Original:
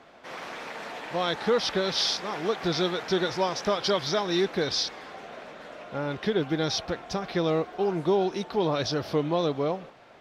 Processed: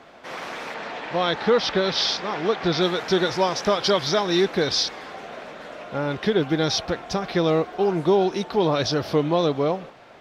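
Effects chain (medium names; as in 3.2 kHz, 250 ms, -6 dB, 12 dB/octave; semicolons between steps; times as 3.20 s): 0.74–2.82 s: low-pass 5 kHz 12 dB/octave; trim +5 dB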